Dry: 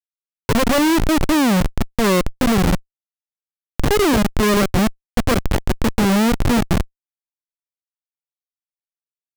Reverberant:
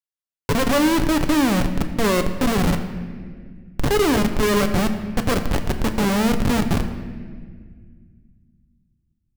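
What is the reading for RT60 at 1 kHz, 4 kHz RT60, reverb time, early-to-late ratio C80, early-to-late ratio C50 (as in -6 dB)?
1.5 s, 1.3 s, 1.8 s, 10.5 dB, 9.5 dB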